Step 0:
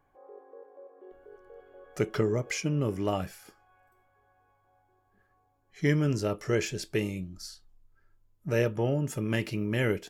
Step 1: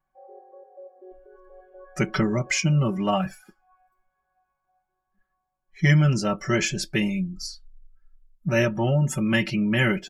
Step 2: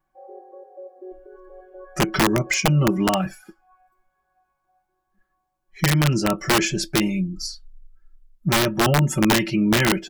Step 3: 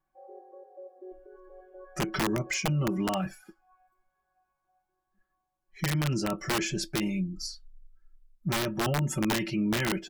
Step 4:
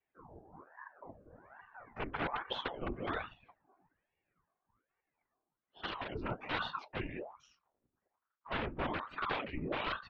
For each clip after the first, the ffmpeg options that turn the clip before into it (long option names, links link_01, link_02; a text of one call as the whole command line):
ffmpeg -i in.wav -af "afftdn=noise_reduction=18:noise_floor=-49,equalizer=frequency=440:width=2.6:gain=-14,aecho=1:1:5.3:0.99,volume=6.5dB" out.wav
ffmpeg -i in.wav -af "alimiter=limit=-15dB:level=0:latency=1:release=371,equalizer=frequency=330:width=5.2:gain=9.5,aeval=exprs='(mod(5.62*val(0)+1,2)-1)/5.62':channel_layout=same,volume=4dB" out.wav
ffmpeg -i in.wav -af "alimiter=limit=-15dB:level=0:latency=1:release=19,volume=-6.5dB" out.wav
ffmpeg -i in.wav -af "afftfilt=real='hypot(re,im)*cos(2*PI*random(0))':imag='hypot(re,im)*sin(2*PI*random(1))':win_size=512:overlap=0.75,highpass=frequency=300:width_type=q:width=0.5412,highpass=frequency=300:width_type=q:width=1.307,lowpass=frequency=3100:width_type=q:width=0.5176,lowpass=frequency=3100:width_type=q:width=0.7071,lowpass=frequency=3100:width_type=q:width=1.932,afreqshift=-210,aeval=exprs='val(0)*sin(2*PI*760*n/s+760*0.8/1.2*sin(2*PI*1.2*n/s))':channel_layout=same,volume=3dB" out.wav